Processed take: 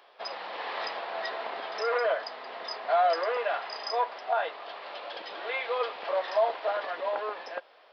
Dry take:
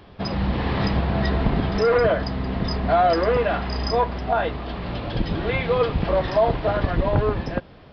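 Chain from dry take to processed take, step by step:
high-pass filter 550 Hz 24 dB per octave
level −5 dB

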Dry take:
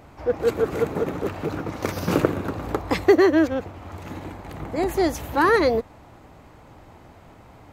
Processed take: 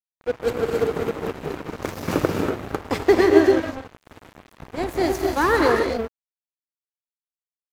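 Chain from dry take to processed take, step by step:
reverb whose tail is shaped and stops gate 300 ms rising, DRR 1.5 dB
dead-zone distortion −29.5 dBFS

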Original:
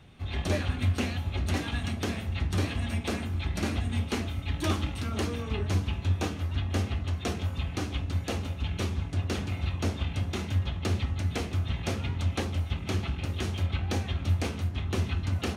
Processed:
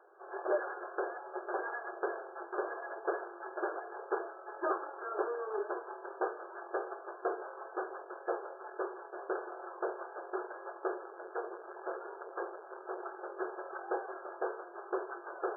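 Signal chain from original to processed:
0:10.99–0:13.06: hard clipping −30.5 dBFS, distortion −15 dB
linear-phase brick-wall band-pass 340–1,700 Hz
level +2 dB

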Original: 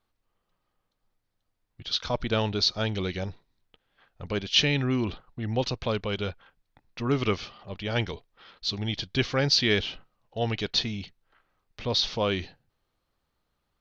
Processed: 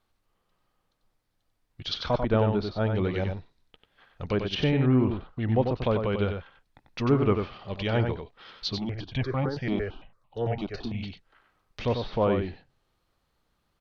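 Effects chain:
treble cut that deepens with the level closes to 1,200 Hz, closed at −24.5 dBFS
single-tap delay 93 ms −6 dB
0:08.78–0:11.03: step-sequenced phaser 8.9 Hz 450–1,600 Hz
level +3 dB

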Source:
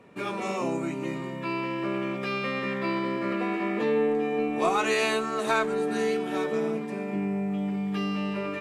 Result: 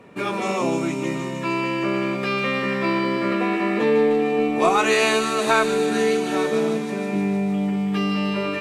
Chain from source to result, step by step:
delay with a high-pass on its return 153 ms, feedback 76%, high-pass 3,500 Hz, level −4 dB
level +6.5 dB

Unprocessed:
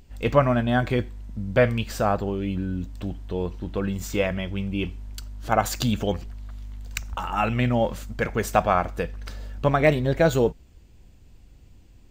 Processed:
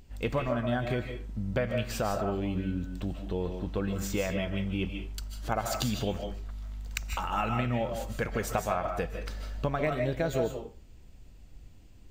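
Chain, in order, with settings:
downward compressor 6 to 1, threshold −24 dBFS, peak gain reduction 12 dB
on a send: convolution reverb RT60 0.35 s, pre-delay 110 ms, DRR 4.5 dB
on the sum: level −2.5 dB

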